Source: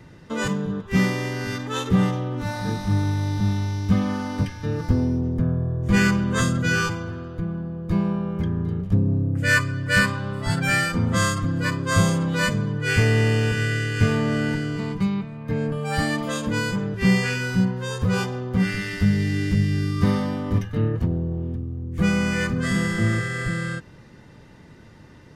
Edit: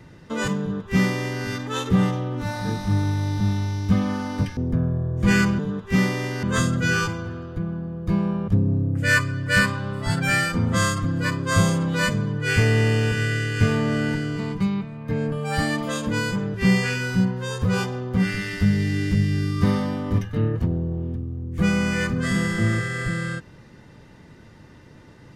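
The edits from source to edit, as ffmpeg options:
-filter_complex "[0:a]asplit=5[a][b][c][d][e];[a]atrim=end=4.572[f];[b]atrim=start=5.228:end=6.252[g];[c]atrim=start=0.598:end=1.442[h];[d]atrim=start=6.248:end=8.302[i];[e]atrim=start=8.878[j];[f][g]acrossfade=d=0.004:c1=hsin:c2=hsin[k];[k][h]acrossfade=d=0.004:c1=hsin:c2=hsin[l];[l][i]acrossfade=d=0.004:c1=hsin:c2=hsin[m];[m][j]acrossfade=d=0.004:c1=hsin:c2=hsin"

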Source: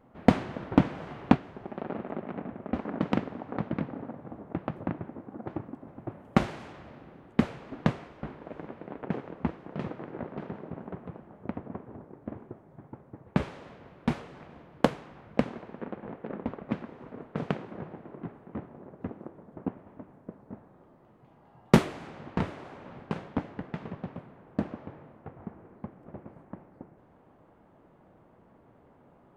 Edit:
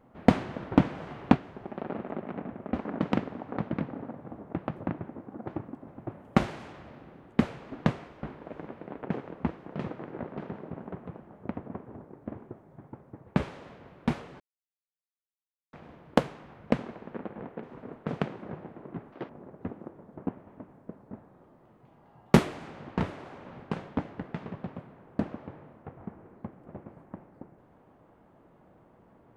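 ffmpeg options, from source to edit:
-filter_complex "[0:a]asplit=5[a][b][c][d][e];[a]atrim=end=14.4,asetpts=PTS-STARTPTS,afade=t=out:st=14.396:d=0.004:c=hsin,apad=pad_dur=1.33[f];[b]atrim=start=14.4:end=16.302,asetpts=PTS-STARTPTS,afade=t=in:d=0.004:c=hsin[g];[c]atrim=start=16.918:end=18.414[h];[d]atrim=start=18.41:end=18.69,asetpts=PTS-STARTPTS,asetrate=70560,aresample=44100[i];[e]atrim=start=18.686[j];[f][g]concat=n=2:v=0:a=1[k];[k][h]acrossfade=d=0.004:c1=hsin:c2=hsin[l];[l][i]acrossfade=d=0.004:c1=hsin:c2=hsin[m];[m][j]acrossfade=d=0.004:c1=hsin:c2=hsin"

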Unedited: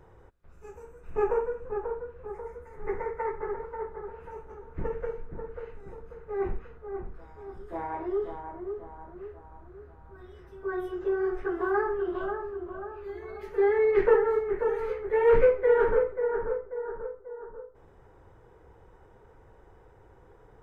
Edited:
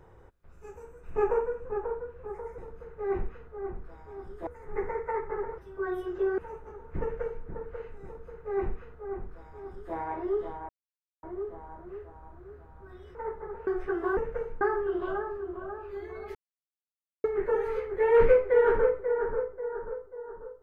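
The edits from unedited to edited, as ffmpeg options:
-filter_complex "[0:a]asplit=12[a][b][c][d][e][f][g][h][i][j][k][l];[a]atrim=end=2.582[m];[b]atrim=start=5.878:end=7.772[n];[c]atrim=start=2.578:end=3.692[o];[d]atrim=start=10.438:end=11.242[p];[e]atrim=start=4.208:end=8.52,asetpts=PTS-STARTPTS,afade=t=out:st=4.308:d=0.004:c=hsin,apad=pad_dur=0.54[q];[f]atrim=start=8.52:end=10.442,asetpts=PTS-STARTPTS,afade=t=in:d=0.004:c=hsin[r];[g]atrim=start=3.688:end=4.212[s];[h]atrim=start=11.238:end=11.742[t];[i]atrim=start=4.848:end=5.292[u];[j]atrim=start=11.738:end=13.48,asetpts=PTS-STARTPTS,afade=t=out:st=1.738:d=0.004:c=hsin[v];[k]atrim=start=13.48:end=14.37,asetpts=PTS-STARTPTS,volume=0[w];[l]atrim=start=14.37,asetpts=PTS-STARTPTS,afade=t=in:d=0.004:c=hsin[x];[m][n]acrossfade=d=0.004:c1=hsin:c2=hsin[y];[y][o]acrossfade=d=0.004:c1=hsin:c2=hsin[z];[z][p]acrossfade=d=0.004:c1=hsin:c2=hsin[aa];[q][r]concat=n=2:v=0:a=1[ab];[aa][ab]acrossfade=d=0.004:c1=hsin:c2=hsin[ac];[ac][s]acrossfade=d=0.004:c1=hsin:c2=hsin[ad];[ad][t]acrossfade=d=0.004:c1=hsin:c2=hsin[ae];[ae][u]acrossfade=d=0.004:c1=hsin:c2=hsin[af];[v][w][x]concat=n=3:v=0:a=1[ag];[af][ag]acrossfade=d=0.004:c1=hsin:c2=hsin"

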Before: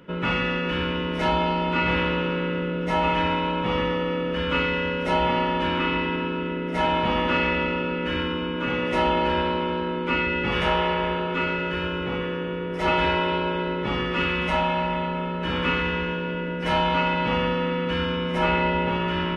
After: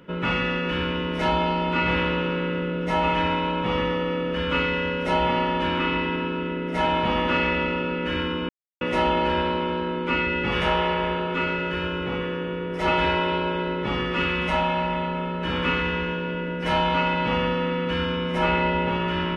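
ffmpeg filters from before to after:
-filter_complex "[0:a]asplit=3[a][b][c];[a]atrim=end=8.49,asetpts=PTS-STARTPTS,afade=t=out:st=8.486:d=0.004:c=hsin[d];[b]atrim=start=8.49:end=8.81,asetpts=PTS-STARTPTS,volume=0[e];[c]atrim=start=8.81,asetpts=PTS-STARTPTS,afade=t=in:d=0.004:c=hsin[f];[d][e][f]concat=n=3:v=0:a=1"

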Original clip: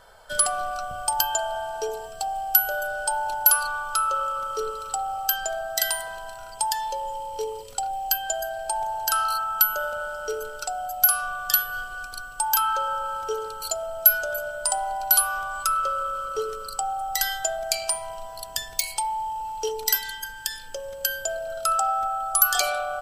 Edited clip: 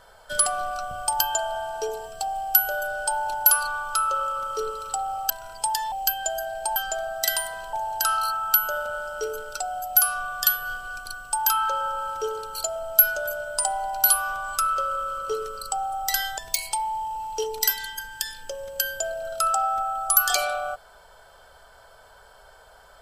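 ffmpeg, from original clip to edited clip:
-filter_complex "[0:a]asplit=6[a][b][c][d][e][f];[a]atrim=end=5.302[g];[b]atrim=start=6.268:end=6.892[h];[c]atrim=start=7.958:end=8.802[i];[d]atrim=start=5.298:end=6.272[j];[e]atrim=start=8.798:end=17.452[k];[f]atrim=start=18.628[l];[g][h]acrossfade=d=0.004:c1=hsin:c2=hsin[m];[m][i]acrossfade=d=0.004:c1=hsin:c2=hsin[n];[n][j]acrossfade=d=0.004:c1=hsin:c2=hsin[o];[o][k]acrossfade=d=0.004:c1=hsin:c2=hsin[p];[p][l]acrossfade=d=0.004:c1=hsin:c2=hsin"

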